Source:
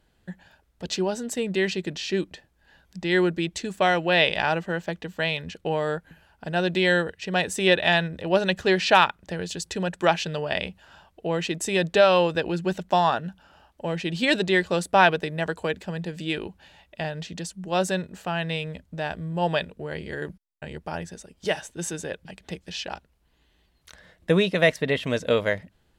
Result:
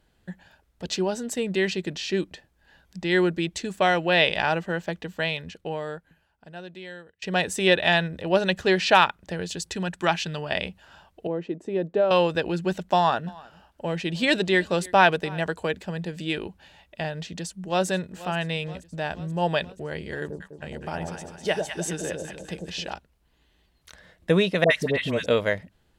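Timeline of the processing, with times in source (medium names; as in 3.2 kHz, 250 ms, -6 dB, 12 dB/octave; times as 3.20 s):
5.13–7.22 s: fade out quadratic, to -21.5 dB
9.73–10.51 s: peaking EQ 520 Hz -7 dB
11.27–12.11 s: band-pass filter 340 Hz, Q 1.1
12.96–15.43 s: delay 309 ms -23 dB
17.21–17.87 s: echo throw 480 ms, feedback 70%, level -17 dB
20.20–22.93 s: echo whose repeats swap between lows and highs 101 ms, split 840 Hz, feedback 64%, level -2.5 dB
24.64–25.26 s: phase dispersion highs, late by 66 ms, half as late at 960 Hz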